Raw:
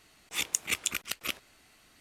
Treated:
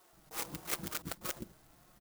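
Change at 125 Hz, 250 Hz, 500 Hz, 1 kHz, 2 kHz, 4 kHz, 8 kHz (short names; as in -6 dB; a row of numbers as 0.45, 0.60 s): +5.0, +2.5, +2.0, 0.0, -11.0, -11.0, -10.5 dB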